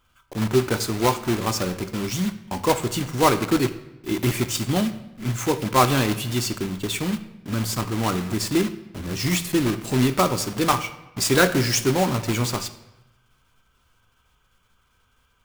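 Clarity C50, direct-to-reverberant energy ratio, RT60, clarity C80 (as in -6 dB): 13.0 dB, 10.0 dB, 0.95 s, 15.5 dB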